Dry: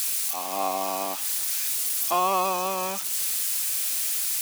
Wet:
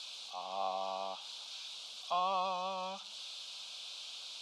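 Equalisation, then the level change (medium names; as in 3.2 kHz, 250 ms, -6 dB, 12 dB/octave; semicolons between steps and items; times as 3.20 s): four-pole ladder low-pass 4.1 kHz, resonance 55%; peaking EQ 72 Hz +5 dB 1.4 oct; static phaser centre 780 Hz, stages 4; +1.0 dB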